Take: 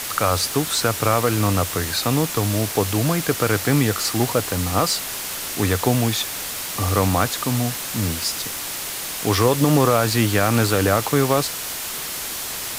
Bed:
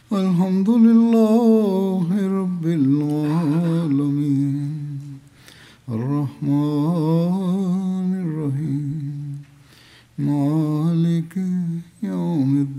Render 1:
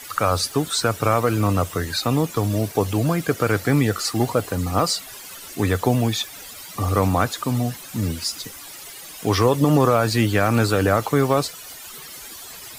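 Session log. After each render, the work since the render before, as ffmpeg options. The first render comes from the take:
ffmpeg -i in.wav -af "afftdn=noise_reduction=14:noise_floor=-29" out.wav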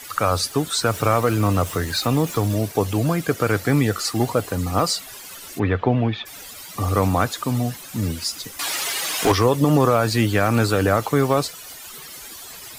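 ffmpeg -i in.wav -filter_complex "[0:a]asettb=1/sr,asplit=3[link_01][link_02][link_03];[link_01]atrim=end=0.864[link_04];[link_02]atrim=start=0.86:end=2.54,asetpts=PTS-STARTPTS,afade=type=in:duration=0.004:curve=qsin,afade=type=out:start_time=1.676:duration=0.004:curve=qsin,aeval=exprs='val(0)+0.5*0.0211*sgn(val(0))':channel_layout=same[link_05];[link_03]atrim=start=2.536[link_06];[link_04][link_05]acrossfade=duration=0.004:curve1=hsin:curve2=qsin[link_07];[link_07][link_06]acrossfade=duration=0.004:curve1=qsin:curve2=hsin,asplit=3[link_08][link_09][link_10];[link_08]afade=type=out:start_time=5.58:duration=0.02[link_11];[link_09]lowpass=frequency=3000:width=0.5412,lowpass=frequency=3000:width=1.3066,afade=type=in:start_time=5.58:duration=0.02,afade=type=out:start_time=6.25:duration=0.02[link_12];[link_10]afade=type=in:start_time=6.25:duration=0.02[link_13];[link_11][link_12][link_13]amix=inputs=3:normalize=0,asettb=1/sr,asplit=3[link_14][link_15][link_16];[link_14]atrim=end=8.594[link_17];[link_15]atrim=start=8.59:end=9.32,asetpts=PTS-STARTPTS,afade=type=in:duration=0.004:curve=qsin,afade=type=out:start_time=0.726:duration=0.004:curve=qsin,asplit=2[link_18][link_19];[link_19]highpass=frequency=720:poles=1,volume=24dB,asoftclip=type=tanh:threshold=-7.5dB[link_20];[link_18][link_20]amix=inputs=2:normalize=0,lowpass=frequency=5000:poles=1,volume=-6dB[link_21];[link_16]atrim=start=9.316[link_22];[link_17][link_21]acrossfade=duration=0.004:curve1=hsin:curve2=qsin[link_23];[link_23][link_22]acrossfade=duration=0.004:curve1=qsin:curve2=hsin" out.wav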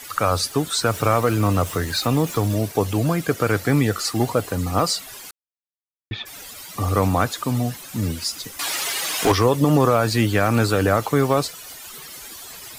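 ffmpeg -i in.wav -filter_complex "[0:a]asplit=3[link_01][link_02][link_03];[link_01]atrim=end=5.31,asetpts=PTS-STARTPTS,afade=type=out:start_time=5.306:duration=0.004:curve=hsin[link_04];[link_02]atrim=start=5.31:end=6.11,asetpts=PTS-STARTPTS,volume=0[link_05];[link_03]atrim=start=6.11,asetpts=PTS-STARTPTS,afade=type=in:duration=0.004:curve=hsin[link_06];[link_04][link_05][link_06]concat=n=3:v=0:a=1" out.wav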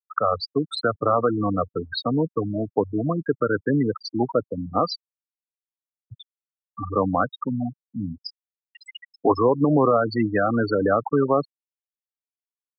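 ffmpeg -i in.wav -filter_complex "[0:a]afftfilt=real='re*gte(hypot(re,im),0.251)':imag='im*gte(hypot(re,im),0.251)':win_size=1024:overlap=0.75,acrossover=split=160 5700:gain=0.178 1 0.224[link_01][link_02][link_03];[link_01][link_02][link_03]amix=inputs=3:normalize=0" out.wav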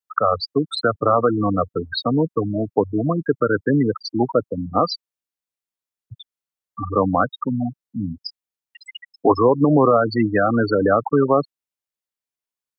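ffmpeg -i in.wav -af "volume=3.5dB" out.wav

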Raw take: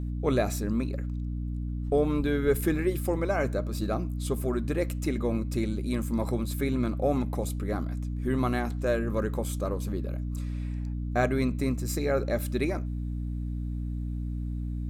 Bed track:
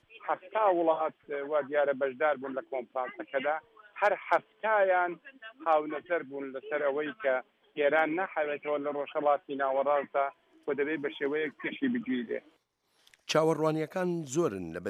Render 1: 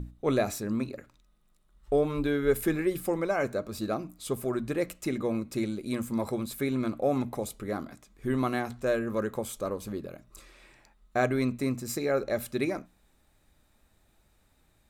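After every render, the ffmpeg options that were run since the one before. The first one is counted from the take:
ffmpeg -i in.wav -af "bandreject=frequency=60:width_type=h:width=6,bandreject=frequency=120:width_type=h:width=6,bandreject=frequency=180:width_type=h:width=6,bandreject=frequency=240:width_type=h:width=6,bandreject=frequency=300:width_type=h:width=6" out.wav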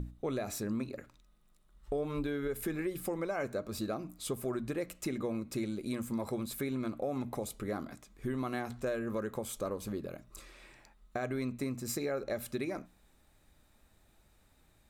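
ffmpeg -i in.wav -af "alimiter=limit=-21dB:level=0:latency=1:release=222,acompressor=threshold=-35dB:ratio=2" out.wav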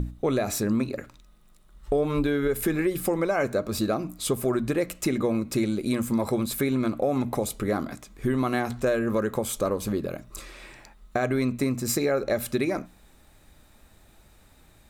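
ffmpeg -i in.wav -af "volume=10.5dB" out.wav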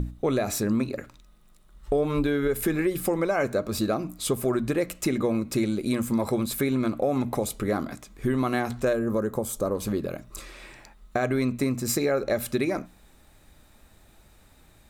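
ffmpeg -i in.wav -filter_complex "[0:a]asettb=1/sr,asplit=3[link_01][link_02][link_03];[link_01]atrim=end=8.934[link_04];[link_02]atrim=start=8.93:end=9.75,asetpts=PTS-STARTPTS,afade=type=in:duration=0.004:curve=qsin,afade=type=out:start_time=0.816:duration=0.004:curve=qsin,equalizer=frequency=2600:width_type=o:width=1.7:gain=-11[link_05];[link_03]atrim=start=9.746[link_06];[link_04][link_05]acrossfade=duration=0.004:curve1=hsin:curve2=qsin[link_07];[link_07][link_06]acrossfade=duration=0.004:curve1=qsin:curve2=hsin" out.wav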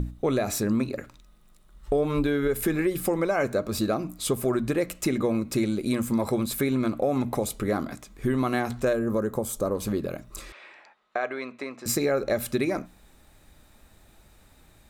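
ffmpeg -i in.wav -filter_complex "[0:a]asettb=1/sr,asplit=3[link_01][link_02][link_03];[link_01]atrim=end=10.524[link_04];[link_02]atrim=start=10.52:end=11.86,asetpts=PTS-STARTPTS,afade=type=in:duration=0.004:curve=qsin,afade=type=out:start_time=1.336:duration=0.004:curve=qsin,highpass=570,lowpass=3200[link_05];[link_03]atrim=start=11.856[link_06];[link_04][link_05]acrossfade=duration=0.004:curve1=hsin:curve2=qsin[link_07];[link_07][link_06]acrossfade=duration=0.004:curve1=qsin:curve2=hsin" out.wav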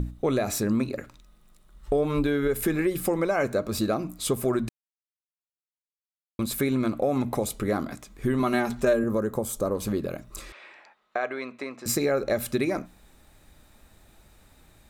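ffmpeg -i in.wav -filter_complex "[0:a]asettb=1/sr,asplit=3[link_01][link_02][link_03];[link_01]atrim=end=8.394[link_04];[link_02]atrim=start=8.39:end=9.04,asetpts=PTS-STARTPTS,afade=type=in:duration=0.004:curve=qsin,afade=type=out:start_time=0.646:duration=0.004:curve=qsin,aecho=1:1:5:0.62,atrim=end_sample=28665[link_05];[link_03]atrim=start=9.036[link_06];[link_04][link_05]acrossfade=duration=0.004:curve1=hsin:curve2=qsin[link_07];[link_07][link_06]acrossfade=duration=0.004:curve1=qsin:curve2=hsin,asplit=3[link_08][link_09][link_10];[link_08]atrim=end=4.69,asetpts=PTS-STARTPTS,afade=type=out:start_time=4.686:duration=0.004:curve=hsin[link_11];[link_09]atrim=start=4.69:end=6.39,asetpts=PTS-STARTPTS,volume=0[link_12];[link_10]atrim=start=6.39,asetpts=PTS-STARTPTS,afade=type=in:duration=0.004:curve=hsin[link_13];[link_11][link_12][link_13]concat=n=3:v=0:a=1" out.wav

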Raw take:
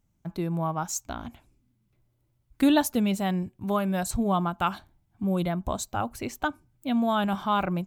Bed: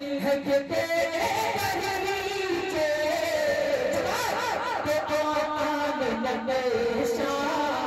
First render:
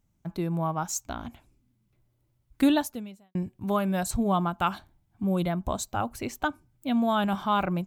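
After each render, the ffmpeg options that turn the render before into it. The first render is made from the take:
ffmpeg -i in.wav -filter_complex "[0:a]asplit=2[link_01][link_02];[link_01]atrim=end=3.35,asetpts=PTS-STARTPTS,afade=type=out:start_time=2.65:duration=0.7:curve=qua[link_03];[link_02]atrim=start=3.35,asetpts=PTS-STARTPTS,afade=type=in:duration=0.004:curve=hsin[link_04];[link_03][link_04]concat=n=2:v=0:a=1" out.wav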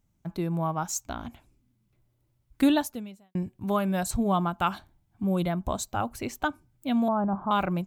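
ffmpeg -i in.wav -filter_complex "[0:a]asettb=1/sr,asplit=3[link_01][link_02][link_03];[link_01]atrim=end=7.084[link_04];[link_02]atrim=start=7.08:end=7.51,asetpts=PTS-STARTPTS,afade=type=in:duration=0.004:curve=qsin,afade=type=out:start_time=0.426:duration=0.004:curve=qsin,lowpass=frequency=1100:width=0.5412,lowpass=frequency=1100:width=1.3066[link_05];[link_03]atrim=start=7.506[link_06];[link_04][link_05]acrossfade=duration=0.004:curve1=hsin:curve2=qsin[link_07];[link_07][link_06]acrossfade=duration=0.004:curve1=qsin:curve2=hsin" out.wav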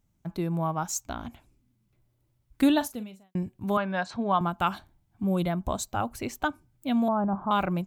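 ffmpeg -i in.wav -filter_complex "[0:a]asettb=1/sr,asplit=3[link_01][link_02][link_03];[link_01]atrim=end=2.734[link_04];[link_02]atrim=start=2.73:end=3.24,asetpts=PTS-STARTPTS,afade=type=in:duration=0.004:curve=qsin,afade=type=out:start_time=0.506:duration=0.004:curve=qsin,asplit=2[link_05][link_06];[link_06]adelay=42,volume=-13dB[link_07];[link_05][link_07]amix=inputs=2:normalize=0,atrim=end_sample=22491[link_08];[link_03]atrim=start=3.236[link_09];[link_04][link_08]acrossfade=duration=0.004:curve1=hsin:curve2=qsin[link_10];[link_10][link_09]acrossfade=duration=0.004:curve1=qsin:curve2=hsin,asettb=1/sr,asplit=3[link_11][link_12][link_13];[link_11]atrim=end=3.774[link_14];[link_12]atrim=start=3.77:end=4.41,asetpts=PTS-STARTPTS,afade=type=in:duration=0.004:curve=qsin,afade=type=out:start_time=0.636:duration=0.004:curve=qsin,highpass=240,equalizer=frequency=360:width_type=q:width=4:gain=-5,equalizer=frequency=990:width_type=q:width=4:gain=5,equalizer=frequency=1600:width_type=q:width=4:gain=7,lowpass=frequency=4700:width=0.5412,lowpass=frequency=4700:width=1.3066[link_15];[link_13]atrim=start=4.406[link_16];[link_14][link_15]acrossfade=duration=0.004:curve1=hsin:curve2=qsin[link_17];[link_17][link_16]acrossfade=duration=0.004:curve1=qsin:curve2=hsin" out.wav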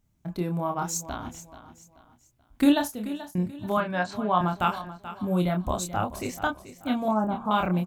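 ffmpeg -i in.wav -filter_complex "[0:a]asplit=2[link_01][link_02];[link_02]adelay=28,volume=-4.5dB[link_03];[link_01][link_03]amix=inputs=2:normalize=0,aecho=1:1:433|866|1299:0.2|0.0718|0.0259" out.wav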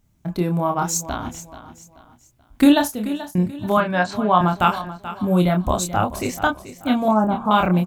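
ffmpeg -i in.wav -af "volume=7.5dB,alimiter=limit=-3dB:level=0:latency=1" out.wav

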